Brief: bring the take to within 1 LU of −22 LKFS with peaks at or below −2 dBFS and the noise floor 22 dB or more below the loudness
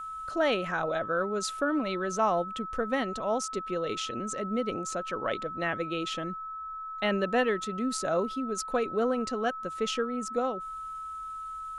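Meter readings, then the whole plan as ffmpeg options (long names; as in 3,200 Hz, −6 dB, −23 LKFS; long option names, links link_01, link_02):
interfering tone 1,300 Hz; level of the tone −36 dBFS; integrated loudness −31.0 LKFS; sample peak −15.0 dBFS; target loudness −22.0 LKFS
→ -af "bandreject=frequency=1300:width=30"
-af "volume=9dB"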